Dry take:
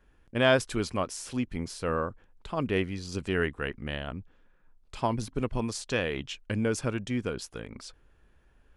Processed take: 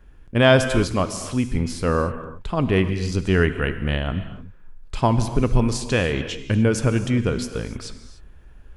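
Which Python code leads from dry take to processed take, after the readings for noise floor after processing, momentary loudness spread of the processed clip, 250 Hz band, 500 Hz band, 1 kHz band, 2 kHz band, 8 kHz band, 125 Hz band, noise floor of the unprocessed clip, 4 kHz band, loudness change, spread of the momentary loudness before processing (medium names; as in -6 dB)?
-45 dBFS, 12 LU, +10.0 dB, +8.0 dB, +7.5 dB, +7.0 dB, +7.0 dB, +13.0 dB, -63 dBFS, +7.0 dB, +9.0 dB, 13 LU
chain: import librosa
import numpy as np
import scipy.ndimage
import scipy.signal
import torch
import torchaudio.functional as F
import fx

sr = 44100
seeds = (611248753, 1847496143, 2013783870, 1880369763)

p1 = fx.rider(x, sr, range_db=4, speed_s=2.0)
p2 = x + (p1 * librosa.db_to_amplitude(2.5))
p3 = fx.low_shelf(p2, sr, hz=160.0, db=9.5)
p4 = fx.rev_gated(p3, sr, seeds[0], gate_ms=320, shape='flat', drr_db=9.5)
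y = p4 * librosa.db_to_amplitude(-1.5)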